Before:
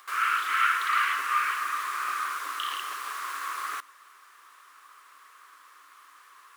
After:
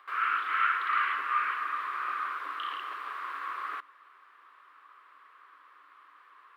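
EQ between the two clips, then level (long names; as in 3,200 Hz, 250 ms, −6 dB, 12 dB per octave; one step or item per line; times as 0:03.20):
high-frequency loss of the air 480 metres
high-shelf EQ 5,200 Hz +6.5 dB
0.0 dB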